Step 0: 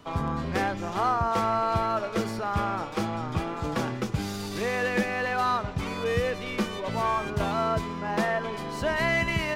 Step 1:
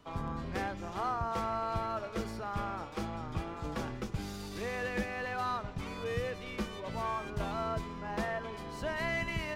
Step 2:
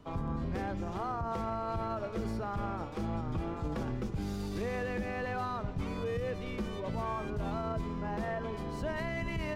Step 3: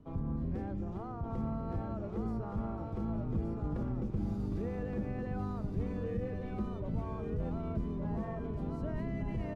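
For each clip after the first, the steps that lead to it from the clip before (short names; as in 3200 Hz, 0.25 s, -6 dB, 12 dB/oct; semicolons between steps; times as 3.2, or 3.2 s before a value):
octaver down 2 oct, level -5 dB; gain -9 dB
tilt shelf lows +5 dB, about 690 Hz; limiter -29 dBFS, peak gain reduction 10 dB; gain +2.5 dB
EQ curve 250 Hz 0 dB, 1000 Hz -11 dB, 3800 Hz -17 dB; echo 1.17 s -4 dB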